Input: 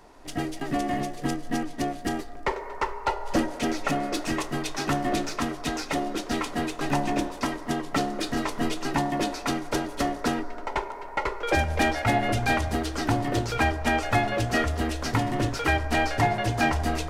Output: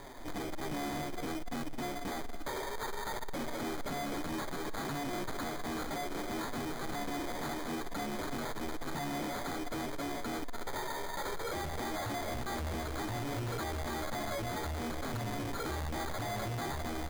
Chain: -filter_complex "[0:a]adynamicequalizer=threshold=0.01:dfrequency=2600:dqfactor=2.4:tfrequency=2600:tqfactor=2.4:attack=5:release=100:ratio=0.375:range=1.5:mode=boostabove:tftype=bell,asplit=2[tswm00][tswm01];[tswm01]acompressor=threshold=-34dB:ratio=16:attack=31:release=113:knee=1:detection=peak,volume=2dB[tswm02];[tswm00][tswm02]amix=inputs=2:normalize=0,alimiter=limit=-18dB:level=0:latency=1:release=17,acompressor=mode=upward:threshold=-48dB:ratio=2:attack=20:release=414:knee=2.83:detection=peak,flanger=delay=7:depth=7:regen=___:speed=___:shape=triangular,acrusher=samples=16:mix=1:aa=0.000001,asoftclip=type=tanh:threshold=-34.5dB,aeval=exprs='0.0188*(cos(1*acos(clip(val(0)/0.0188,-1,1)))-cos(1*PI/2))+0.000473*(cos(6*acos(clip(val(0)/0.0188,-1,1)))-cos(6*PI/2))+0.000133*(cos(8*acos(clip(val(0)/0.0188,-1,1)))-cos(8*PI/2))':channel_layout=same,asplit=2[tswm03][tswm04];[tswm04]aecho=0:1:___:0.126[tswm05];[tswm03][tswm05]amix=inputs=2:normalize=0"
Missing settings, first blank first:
10, 0.6, 283